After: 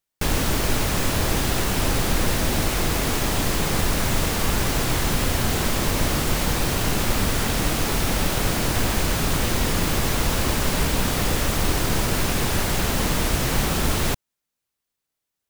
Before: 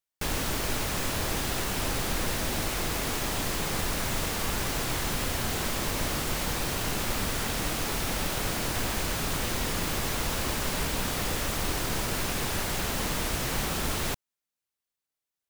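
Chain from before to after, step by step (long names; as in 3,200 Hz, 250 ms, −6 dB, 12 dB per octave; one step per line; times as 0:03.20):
low-shelf EQ 400 Hz +4.5 dB
level +5.5 dB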